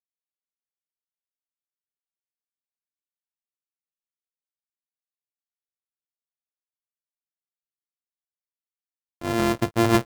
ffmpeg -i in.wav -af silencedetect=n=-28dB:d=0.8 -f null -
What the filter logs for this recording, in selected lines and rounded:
silence_start: 0.00
silence_end: 9.22 | silence_duration: 9.22